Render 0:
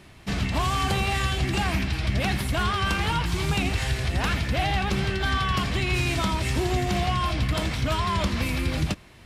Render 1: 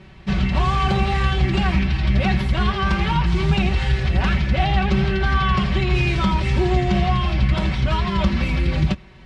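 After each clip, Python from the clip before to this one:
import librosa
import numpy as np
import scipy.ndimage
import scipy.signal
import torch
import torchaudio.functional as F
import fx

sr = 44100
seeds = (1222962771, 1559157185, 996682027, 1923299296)

y = scipy.signal.sosfilt(scipy.signal.butter(2, 4000.0, 'lowpass', fs=sr, output='sos'), x)
y = fx.peak_eq(y, sr, hz=76.0, db=10.0, octaves=1.8)
y = y + 0.98 * np.pad(y, (int(5.3 * sr / 1000.0), 0))[:len(y)]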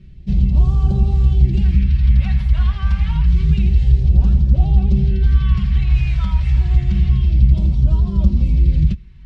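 y = fx.low_shelf(x, sr, hz=100.0, db=11.0)
y = fx.phaser_stages(y, sr, stages=2, low_hz=320.0, high_hz=1900.0, hz=0.28, feedback_pct=25)
y = fx.low_shelf(y, sr, hz=380.0, db=10.0)
y = F.gain(torch.from_numpy(y), -11.0).numpy()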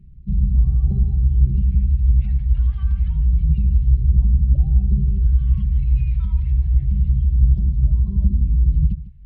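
y = fx.envelope_sharpen(x, sr, power=1.5)
y = y + 10.0 ** (-16.0 / 20.0) * np.pad(y, (int(150 * sr / 1000.0), 0))[:len(y)]
y = F.gain(torch.from_numpy(y), -3.0).numpy()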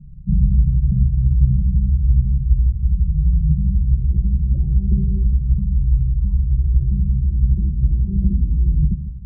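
y = fx.rider(x, sr, range_db=3, speed_s=0.5)
y = fx.filter_sweep_lowpass(y, sr, from_hz=160.0, to_hz=380.0, start_s=3.65, end_s=4.17, q=1.7)
y = fx.room_shoebox(y, sr, seeds[0], volume_m3=3500.0, walls='furnished', distance_m=0.89)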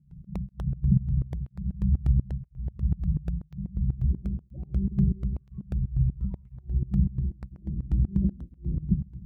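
y = fx.volume_shaper(x, sr, bpm=123, per_beat=2, depth_db=-21, release_ms=107.0, shape='slow start')
y = fx.flanger_cancel(y, sr, hz=1.0, depth_ms=2.2)
y = F.gain(torch.from_numpy(y), 2.0).numpy()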